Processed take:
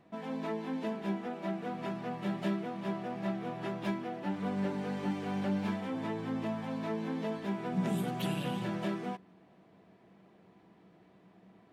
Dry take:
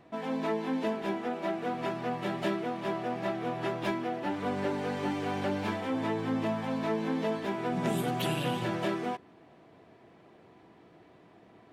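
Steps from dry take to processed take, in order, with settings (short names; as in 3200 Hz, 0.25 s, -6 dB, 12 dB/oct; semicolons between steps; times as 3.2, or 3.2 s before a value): bell 190 Hz +14.5 dB 0.21 oct; gain -6 dB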